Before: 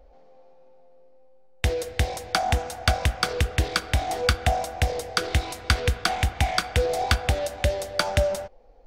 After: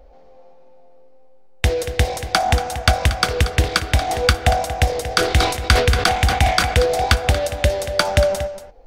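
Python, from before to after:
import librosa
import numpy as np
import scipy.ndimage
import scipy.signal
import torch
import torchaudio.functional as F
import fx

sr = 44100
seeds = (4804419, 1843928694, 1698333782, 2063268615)

y = x + 10.0 ** (-12.0 / 20.0) * np.pad(x, (int(233 * sr / 1000.0), 0))[:len(x)]
y = fx.sustainer(y, sr, db_per_s=77.0, at=(5.05, 6.89))
y = y * 10.0 ** (6.0 / 20.0)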